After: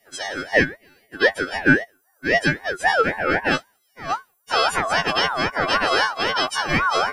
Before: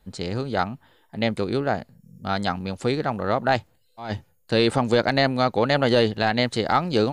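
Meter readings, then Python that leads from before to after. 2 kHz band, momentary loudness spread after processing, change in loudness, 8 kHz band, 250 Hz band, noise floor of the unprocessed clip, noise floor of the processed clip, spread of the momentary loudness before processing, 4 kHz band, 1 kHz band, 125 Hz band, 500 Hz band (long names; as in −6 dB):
+9.5 dB, 10 LU, +2.5 dB, +9.5 dB, −2.0 dB, −63 dBFS, −65 dBFS, 14 LU, +4.0 dB, +3.0 dB, −5.0 dB, −1.5 dB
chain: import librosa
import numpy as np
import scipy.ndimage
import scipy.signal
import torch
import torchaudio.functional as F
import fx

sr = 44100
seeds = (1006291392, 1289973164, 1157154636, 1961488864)

y = fx.freq_snap(x, sr, grid_st=3)
y = fx.filter_sweep_highpass(y, sr, from_hz=600.0, to_hz=170.0, start_s=2.51, end_s=4.62, q=7.6)
y = fx.ring_lfo(y, sr, carrier_hz=1100.0, swing_pct=20, hz=3.8)
y = F.gain(torch.from_numpy(y), -1.0).numpy()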